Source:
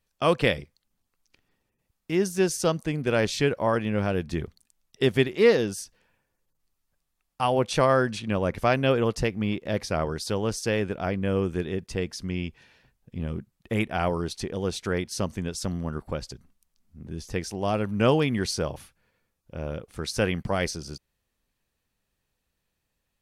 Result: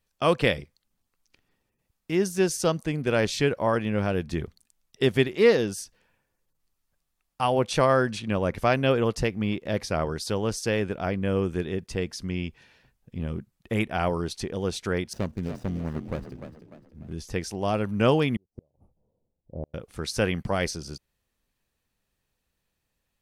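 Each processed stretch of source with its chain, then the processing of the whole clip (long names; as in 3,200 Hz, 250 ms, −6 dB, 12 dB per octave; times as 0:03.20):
0:15.13–0:17.13: running median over 41 samples + echo with shifted repeats 298 ms, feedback 39%, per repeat +40 Hz, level −9.5 dB
0:18.36–0:19.74: inverse Chebyshev low-pass filter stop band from 1,500 Hz + gate with flip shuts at −24 dBFS, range −41 dB
whole clip: no processing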